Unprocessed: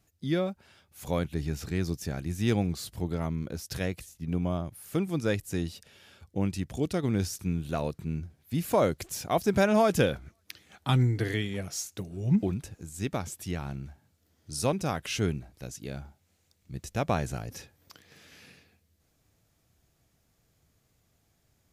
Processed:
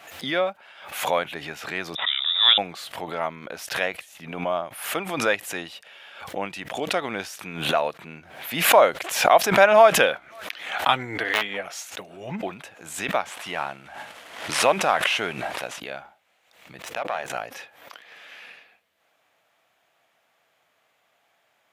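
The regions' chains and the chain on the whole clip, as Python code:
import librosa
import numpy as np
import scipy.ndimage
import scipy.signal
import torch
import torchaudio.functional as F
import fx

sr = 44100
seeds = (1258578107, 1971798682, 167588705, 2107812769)

y = fx.chain(x, sr, fx.law_mismatch(coded='A'),
    fx.freq_invert(carrier_hz=3700), at=(1.95, 2.58))
y = fx.chain(y, sr, fx.high_shelf(hz=4300.0, db=-7.5),
    fx.overflow_wrap(gain_db=20.5),
    fx.doubler(ms=14.0, db=-11), at=(11.23, 11.66))
y = fx.chain(y, sr, fx.cvsd(bps=64000),
    fx.sustainer(db_per_s=26.0), at=(13.25, 15.8))
y = fx.chain(y, sr, fx.halfwave_gain(db=-12.0),
    fx.hum_notches(base_hz=50, count=10),
    fx.level_steps(step_db=18), at=(16.82, 17.3))
y = scipy.signal.sosfilt(scipy.signal.butter(2, 290.0, 'highpass', fs=sr, output='sos'), y)
y = fx.band_shelf(y, sr, hz=1400.0, db=14.5, octaves=3.0)
y = fx.pre_swell(y, sr, db_per_s=76.0)
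y = y * 10.0 ** (-2.5 / 20.0)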